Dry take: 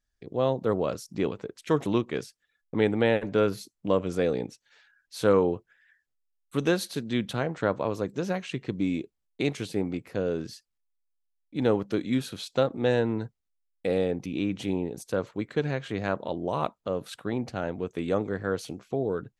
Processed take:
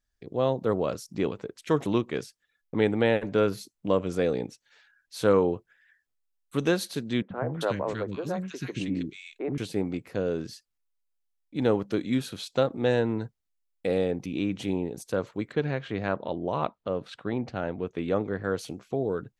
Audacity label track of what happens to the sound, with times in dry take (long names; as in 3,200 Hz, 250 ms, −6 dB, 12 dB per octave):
7.220000	9.580000	three-band delay without the direct sound mids, lows, highs 80/320 ms, splits 310/1,600 Hz
15.520000	18.440000	low-pass filter 4,200 Hz